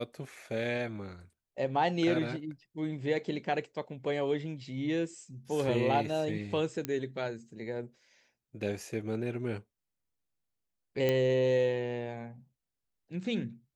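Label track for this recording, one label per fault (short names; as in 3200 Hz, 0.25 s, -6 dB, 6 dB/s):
6.850000	6.850000	pop -17 dBFS
11.090000	11.090000	pop -16 dBFS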